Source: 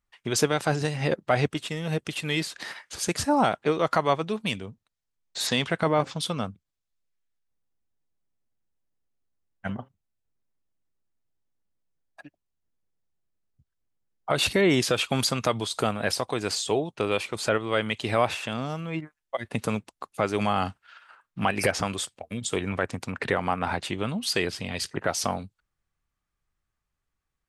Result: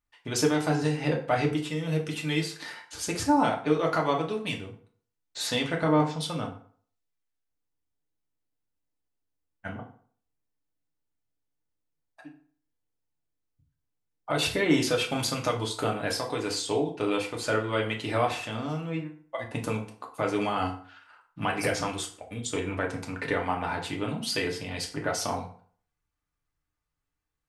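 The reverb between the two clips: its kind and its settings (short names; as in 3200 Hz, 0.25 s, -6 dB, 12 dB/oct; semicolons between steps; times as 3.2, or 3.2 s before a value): FDN reverb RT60 0.5 s, low-frequency decay 0.95×, high-frequency decay 0.7×, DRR -0.5 dB; gain -5.5 dB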